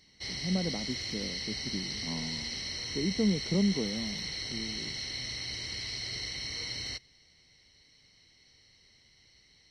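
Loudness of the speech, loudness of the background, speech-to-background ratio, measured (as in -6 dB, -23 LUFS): -34.5 LUFS, -35.0 LUFS, 0.5 dB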